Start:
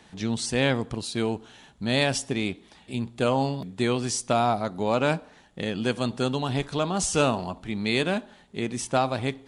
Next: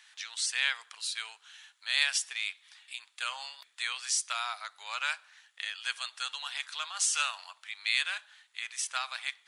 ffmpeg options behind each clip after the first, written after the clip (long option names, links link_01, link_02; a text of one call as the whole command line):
ffmpeg -i in.wav -af "highpass=frequency=1400:width=0.5412,highpass=frequency=1400:width=1.3066" out.wav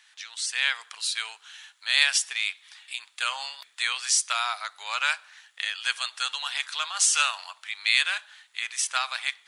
ffmpeg -i in.wav -af "dynaudnorm=framelen=430:gausssize=3:maxgain=7dB" out.wav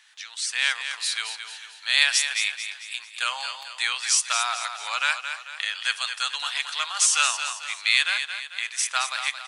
ffmpeg -i in.wav -af "aecho=1:1:222|444|666|888|1110:0.376|0.165|0.0728|0.032|0.0141,volume=1.5dB" out.wav